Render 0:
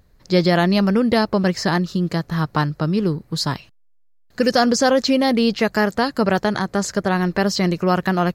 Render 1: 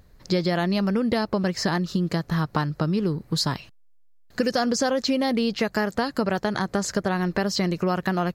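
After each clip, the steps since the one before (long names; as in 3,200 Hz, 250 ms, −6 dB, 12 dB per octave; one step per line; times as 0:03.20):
downward compressor 4 to 1, threshold −23 dBFS, peak gain reduction 11 dB
level +2 dB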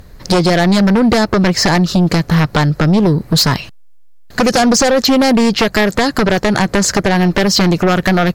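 sine wavefolder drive 11 dB, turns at −8 dBFS
level +1 dB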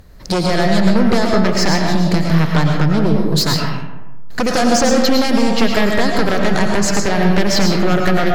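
convolution reverb RT60 1.1 s, pre-delay 70 ms, DRR 0.5 dB
level −5.5 dB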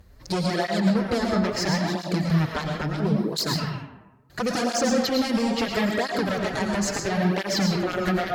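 through-zero flanger with one copy inverted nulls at 0.74 Hz, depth 7.6 ms
level −6 dB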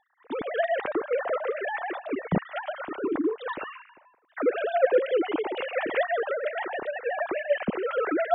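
three sine waves on the formant tracks
level −3.5 dB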